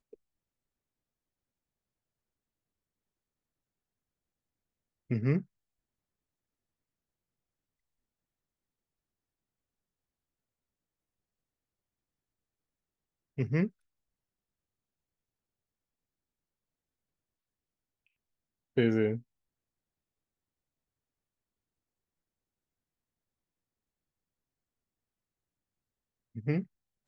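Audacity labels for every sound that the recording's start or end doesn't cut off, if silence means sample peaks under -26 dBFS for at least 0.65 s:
5.110000	5.380000	sound
13.390000	13.640000	sound
18.780000	19.140000	sound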